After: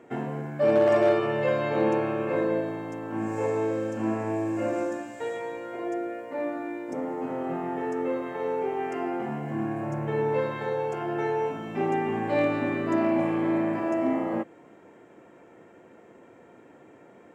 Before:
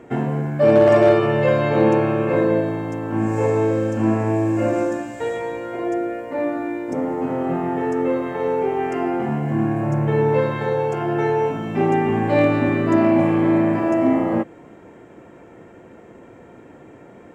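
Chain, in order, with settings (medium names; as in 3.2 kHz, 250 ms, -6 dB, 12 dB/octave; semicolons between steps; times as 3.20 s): high-pass 240 Hz 6 dB/octave; trim -6.5 dB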